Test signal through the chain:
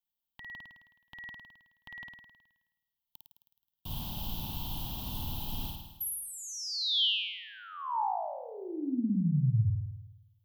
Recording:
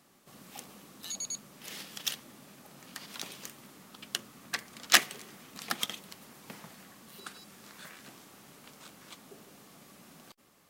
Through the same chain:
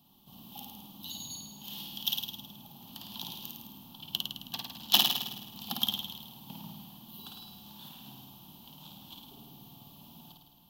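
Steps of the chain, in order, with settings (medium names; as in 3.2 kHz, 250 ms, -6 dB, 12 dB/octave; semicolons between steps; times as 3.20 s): FFT filter 120 Hz 0 dB, 250 Hz -4 dB, 500 Hz -21 dB, 890 Hz -2 dB, 1.3 kHz -21 dB, 2.1 kHz -29 dB, 3.1 kHz +1 dB, 4.9 kHz -11 dB, 8.9 kHz -21 dB, 13 kHz +1 dB; flutter echo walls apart 9.1 m, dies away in 1 s; trim +5 dB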